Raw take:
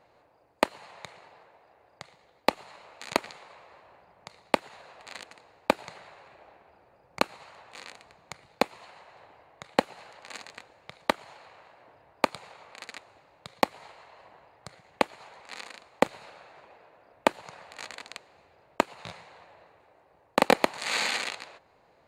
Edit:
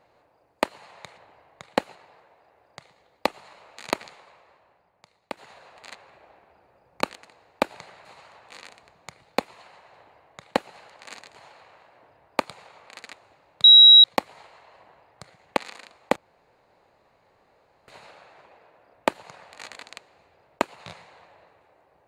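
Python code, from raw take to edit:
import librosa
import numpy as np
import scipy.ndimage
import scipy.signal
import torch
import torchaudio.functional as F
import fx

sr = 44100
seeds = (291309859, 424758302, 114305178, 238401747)

y = fx.edit(x, sr, fx.fade_out_to(start_s=3.27, length_s=1.33, curve='qua', floor_db=-11.0),
    fx.move(start_s=5.18, length_s=0.95, to_s=7.28),
    fx.duplicate(start_s=9.19, length_s=0.77, to_s=1.18),
    fx.cut(start_s=10.58, length_s=0.62),
    fx.insert_tone(at_s=13.49, length_s=0.4, hz=3860.0, db=-7.0),
    fx.cut(start_s=15.02, length_s=0.46),
    fx.insert_room_tone(at_s=16.07, length_s=1.72), tone=tone)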